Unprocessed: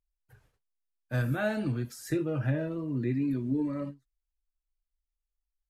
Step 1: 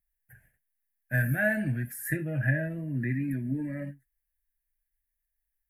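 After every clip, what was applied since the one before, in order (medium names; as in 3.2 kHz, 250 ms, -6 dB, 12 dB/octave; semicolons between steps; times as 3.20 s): FFT filter 100 Hz 0 dB, 180 Hz +5 dB, 440 Hz -11 dB, 650 Hz +2 dB, 1.2 kHz -19 dB, 1.7 kHz +15 dB, 3.9 kHz -16 dB, 6.5 kHz -9 dB, 11 kHz +13 dB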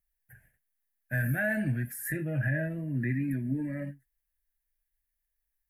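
peak limiter -20.5 dBFS, peak gain reduction 6.5 dB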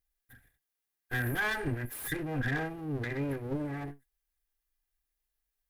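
comb filter that takes the minimum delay 2.5 ms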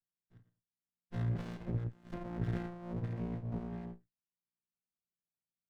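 vocoder on a held chord bare fifth, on A#2; sliding maximum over 65 samples; trim -2 dB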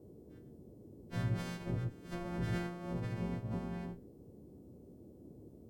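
partials quantised in pitch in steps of 2 st; band noise 57–420 Hz -57 dBFS; trim +2 dB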